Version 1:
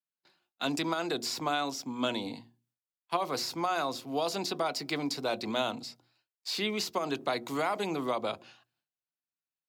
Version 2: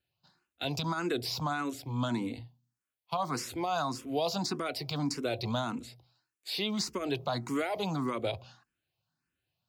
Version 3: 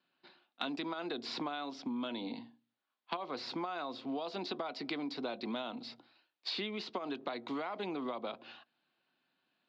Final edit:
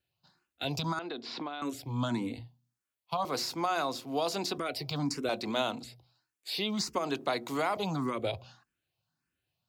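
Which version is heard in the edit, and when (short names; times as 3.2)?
2
0.99–1.62 from 3
3.25–4.58 from 1
5.29–5.84 from 1
6.96–7.77 from 1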